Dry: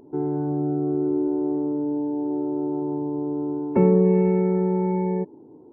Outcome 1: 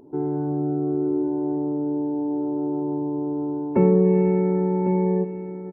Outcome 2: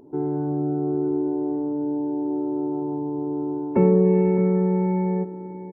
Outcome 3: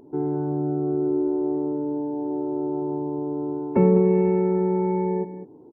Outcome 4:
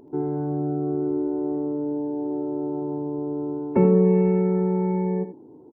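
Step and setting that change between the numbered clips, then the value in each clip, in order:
single-tap delay, delay time: 1,101, 613, 203, 80 milliseconds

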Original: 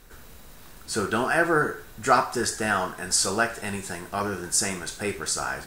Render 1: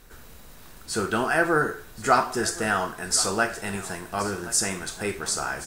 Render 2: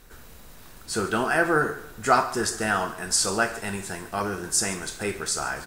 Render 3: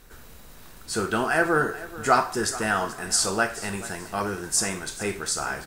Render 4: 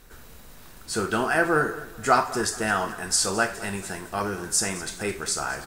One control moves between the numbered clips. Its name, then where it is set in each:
repeating echo, delay time: 1,073, 141, 432, 214 milliseconds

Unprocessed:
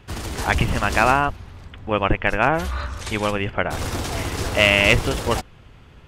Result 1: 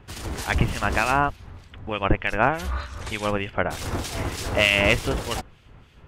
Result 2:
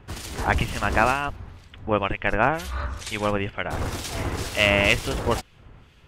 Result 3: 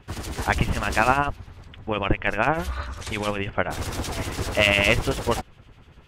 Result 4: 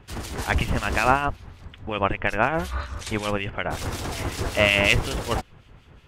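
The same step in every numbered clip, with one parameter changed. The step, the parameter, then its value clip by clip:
two-band tremolo in antiphase, speed: 3.3, 2.1, 10, 5.4 Hertz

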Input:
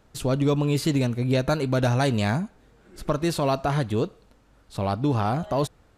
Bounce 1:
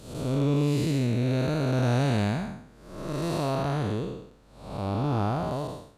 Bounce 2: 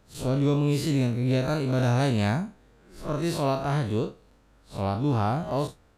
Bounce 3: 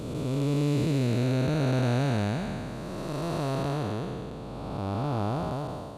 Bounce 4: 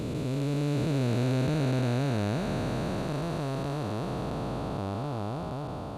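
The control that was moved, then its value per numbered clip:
spectrum smeared in time, width: 299, 90, 730, 1,810 milliseconds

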